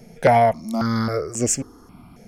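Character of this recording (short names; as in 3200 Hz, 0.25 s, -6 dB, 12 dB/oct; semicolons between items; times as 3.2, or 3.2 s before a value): notches that jump at a steady rate 3.7 Hz 300–3700 Hz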